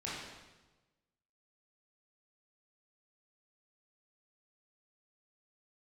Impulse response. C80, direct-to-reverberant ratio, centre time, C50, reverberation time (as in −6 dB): 2.0 dB, −8.0 dB, 86 ms, −1.5 dB, 1.2 s